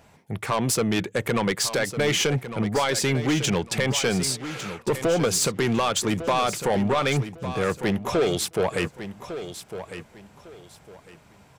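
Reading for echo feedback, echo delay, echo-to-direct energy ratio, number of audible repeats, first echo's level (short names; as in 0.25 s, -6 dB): 25%, 1.153 s, -11.0 dB, 2, -11.5 dB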